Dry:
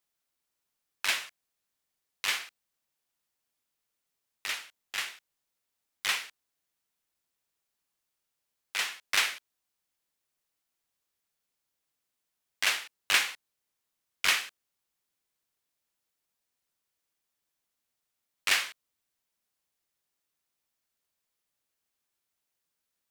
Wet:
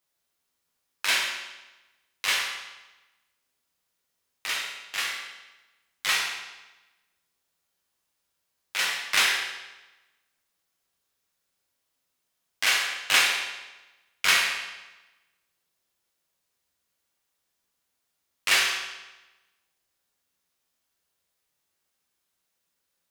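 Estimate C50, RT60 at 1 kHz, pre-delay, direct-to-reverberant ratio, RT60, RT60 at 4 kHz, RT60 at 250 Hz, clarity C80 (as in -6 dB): 2.5 dB, 1.1 s, 5 ms, -3.0 dB, 1.1 s, 1.0 s, 1.1 s, 5.0 dB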